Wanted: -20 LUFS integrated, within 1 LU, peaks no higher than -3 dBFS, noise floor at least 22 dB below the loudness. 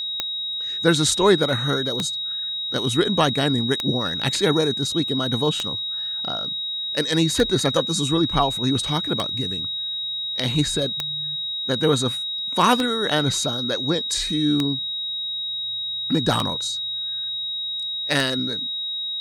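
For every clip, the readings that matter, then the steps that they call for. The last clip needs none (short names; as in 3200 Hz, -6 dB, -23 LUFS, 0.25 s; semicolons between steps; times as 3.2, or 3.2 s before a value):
clicks 11; steady tone 3800 Hz; tone level -25 dBFS; loudness -22.0 LUFS; peak -2.5 dBFS; loudness target -20.0 LUFS
-> de-click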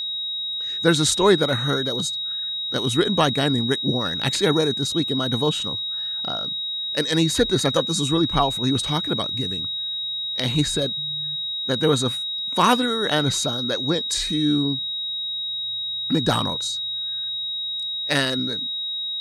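clicks 0; steady tone 3800 Hz; tone level -25 dBFS
-> notch 3800 Hz, Q 30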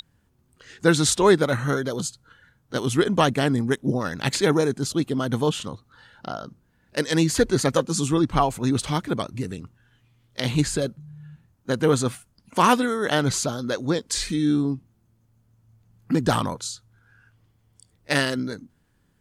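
steady tone none; loudness -23.5 LUFS; peak -2.5 dBFS; loudness target -20.0 LUFS
-> gain +3.5 dB; limiter -3 dBFS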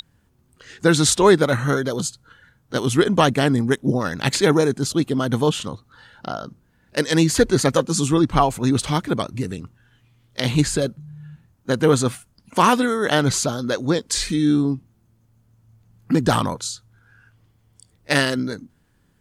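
loudness -20.0 LUFS; peak -3.0 dBFS; noise floor -62 dBFS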